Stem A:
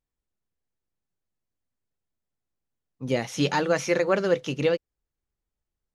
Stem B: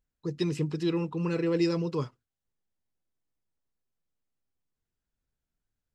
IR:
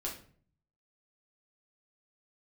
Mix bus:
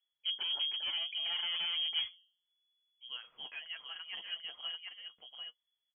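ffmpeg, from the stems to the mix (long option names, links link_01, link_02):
-filter_complex "[0:a]volume=-17.5dB,asplit=2[link_01][link_02];[link_02]volume=-3.5dB[link_03];[1:a]bandreject=frequency=178.4:width_type=h:width=4,bandreject=frequency=356.8:width_type=h:width=4,bandreject=frequency=535.2:width_type=h:width=4,bandreject=frequency=713.6:width_type=h:width=4,volume=0.5dB[link_04];[link_03]aecho=0:1:740:1[link_05];[link_01][link_04][link_05]amix=inputs=3:normalize=0,asoftclip=type=hard:threshold=-28dB,flanger=delay=5.7:depth=2.6:regen=51:speed=0.45:shape=triangular,lowpass=frequency=2900:width_type=q:width=0.5098,lowpass=frequency=2900:width_type=q:width=0.6013,lowpass=frequency=2900:width_type=q:width=0.9,lowpass=frequency=2900:width_type=q:width=2.563,afreqshift=-3400"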